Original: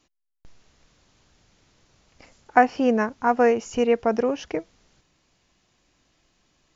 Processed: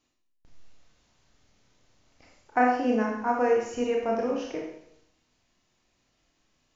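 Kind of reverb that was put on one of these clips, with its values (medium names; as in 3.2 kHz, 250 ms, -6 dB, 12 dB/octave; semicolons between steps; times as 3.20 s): Schroeder reverb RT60 0.73 s, combs from 25 ms, DRR -1.5 dB; trim -9 dB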